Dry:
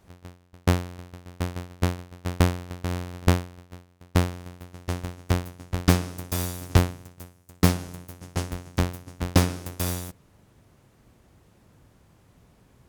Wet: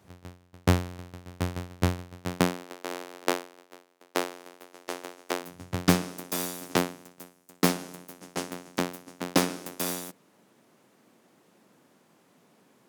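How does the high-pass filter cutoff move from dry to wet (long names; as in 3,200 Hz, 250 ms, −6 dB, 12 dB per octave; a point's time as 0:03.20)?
high-pass filter 24 dB per octave
0:02.14 81 Hz
0:02.75 330 Hz
0:05.39 330 Hz
0:05.62 82 Hz
0:06.19 200 Hz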